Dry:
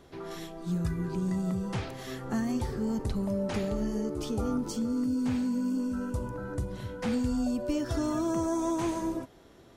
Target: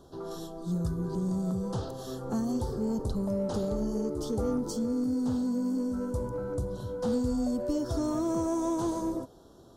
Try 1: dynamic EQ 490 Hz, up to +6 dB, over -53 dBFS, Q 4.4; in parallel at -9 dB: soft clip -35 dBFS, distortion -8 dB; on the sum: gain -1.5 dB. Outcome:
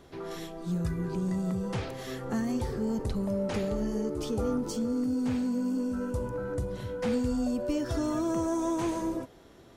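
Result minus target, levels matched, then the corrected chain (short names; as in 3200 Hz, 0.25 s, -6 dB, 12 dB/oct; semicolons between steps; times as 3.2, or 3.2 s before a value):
2000 Hz band +9.5 dB
dynamic EQ 490 Hz, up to +6 dB, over -53 dBFS, Q 4.4; Butterworth band-stop 2200 Hz, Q 0.94; in parallel at -9 dB: soft clip -35 dBFS, distortion -8 dB; on the sum: gain -1.5 dB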